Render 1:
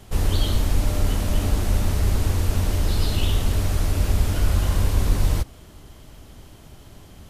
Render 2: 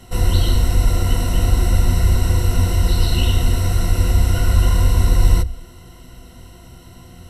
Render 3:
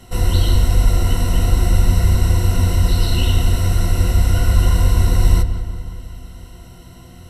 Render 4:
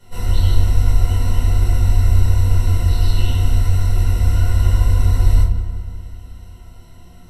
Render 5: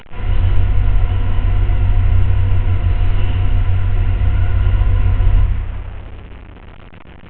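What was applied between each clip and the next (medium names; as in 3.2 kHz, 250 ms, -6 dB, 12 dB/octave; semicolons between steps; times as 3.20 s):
rippled EQ curve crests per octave 2, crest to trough 15 dB; trim +1.5 dB
filtered feedback delay 183 ms, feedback 63%, low-pass 3.3 kHz, level -11.5 dB
reverberation RT60 0.45 s, pre-delay 7 ms, DRR -5.5 dB; trim -13 dB
one-bit delta coder 16 kbps, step -29.5 dBFS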